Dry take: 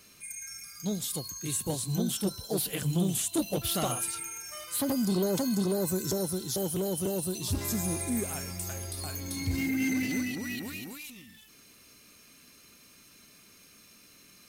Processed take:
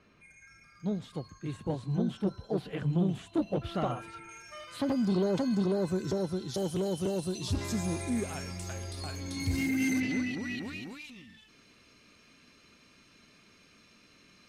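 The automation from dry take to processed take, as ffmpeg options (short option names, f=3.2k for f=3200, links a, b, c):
-af "asetnsamples=n=441:p=0,asendcmd='4.29 lowpass f 3300;6.54 lowpass f 5600;9.4 lowpass f 11000;10 lowpass f 4100',lowpass=1.8k"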